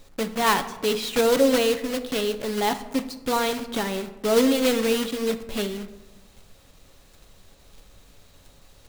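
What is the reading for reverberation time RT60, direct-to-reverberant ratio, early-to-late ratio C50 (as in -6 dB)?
1.2 s, 8.0 dB, 12.5 dB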